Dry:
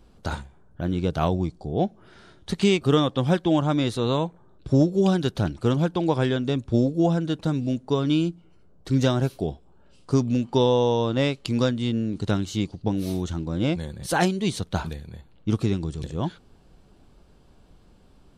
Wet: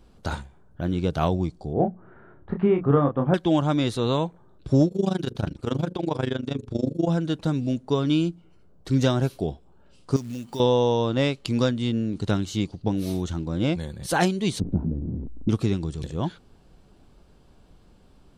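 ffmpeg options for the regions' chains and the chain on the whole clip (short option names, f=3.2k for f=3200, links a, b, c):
-filter_complex "[0:a]asettb=1/sr,asplit=3[a][b][c];[a]atrim=end=1.734[d];[b]atrim=start=1.73:end=3.34,asetpts=PTS-STARTPTS,afade=t=in:d=0.004:c=qsin,afade=t=out:st=1.606:d=0.004:c=qsin,lowpass=f=1.6k:w=0.5412,lowpass=f=1.6k:w=1.3066,bandreject=f=60:t=h:w=6,bandreject=f=120:t=h:w=6,bandreject=f=180:t=h:w=6,asplit=2[e][f];[f]adelay=28,volume=-5dB[g];[e][g]amix=inputs=2:normalize=0,atrim=end_sample=71001[h];[c]atrim=start=3.336[i];[d][h]acrossfade=d=0.004:c1=hsin:c2=qsin[j];[j][i]acrossfade=d=0.004:c1=qsin:c2=hsin,asettb=1/sr,asplit=3[k][l][m];[k]atrim=end=4.884[n];[l]atrim=start=4.88:end=7.09,asetpts=PTS-STARTPTS,afade=t=in:d=0.004:c=qsin,afade=t=out:st=2.206:d=0.004:c=qsin,bandreject=f=60:t=h:w=6,bandreject=f=120:t=h:w=6,bandreject=f=180:t=h:w=6,bandreject=f=240:t=h:w=6,bandreject=f=300:t=h:w=6,bandreject=f=360:t=h:w=6,bandreject=f=420:t=h:w=6,bandreject=f=480:t=h:w=6,bandreject=f=540:t=h:w=6,tremolo=f=25:d=0.889[o];[m]atrim=start=7.086[p];[n][o]acrossfade=d=0.004:c1=hsin:c2=qsin[q];[q][p]acrossfade=d=0.004:c1=qsin:c2=hsin,asettb=1/sr,asplit=3[r][s][t];[r]atrim=end=10.164[u];[s]atrim=start=10.16:end=10.6,asetpts=PTS-STARTPTS,afade=t=in:d=0.004:c=qsin,afade=t=out:st=0.436:d=0.004:c=qsin,aemphasis=mode=production:type=75kf,acompressor=threshold=-35dB:ratio=2.5:attack=3.2:release=140:knee=1:detection=peak,acrusher=bits=5:mode=log:mix=0:aa=0.000001[v];[t]atrim=start=10.596[w];[u][v]acrossfade=d=0.004:c1=hsin:c2=qsin[x];[x][w]acrossfade=d=0.004:c1=qsin:c2=hsin,asettb=1/sr,asplit=3[y][z][aa];[y]atrim=end=14.604[ab];[z]atrim=start=14.6:end=15.49,asetpts=PTS-STARTPTS,afade=t=in:d=0.004:c=qsin,afade=t=out:st=0.886:d=0.004:c=qsin,aeval=exprs='val(0)+0.5*0.0501*sgn(val(0))':c=same,lowpass=f=270:t=q:w=3.1,tremolo=f=57:d=0.462[ac];[aa]atrim=start=15.486[ad];[ab][ac]acrossfade=d=0.004:c1=hsin:c2=qsin[ae];[ae][ad]acrossfade=d=0.004:c1=qsin:c2=hsin"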